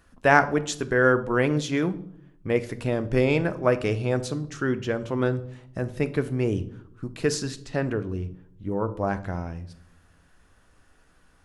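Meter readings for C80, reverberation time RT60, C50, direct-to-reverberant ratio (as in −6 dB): 20.0 dB, 0.70 s, 16.0 dB, 11.0 dB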